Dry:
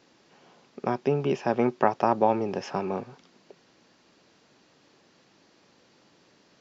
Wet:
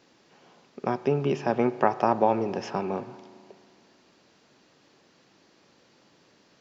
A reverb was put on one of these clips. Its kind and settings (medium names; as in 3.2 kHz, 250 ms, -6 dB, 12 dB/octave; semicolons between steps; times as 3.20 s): spring tank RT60 2.4 s, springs 35 ms, chirp 50 ms, DRR 14.5 dB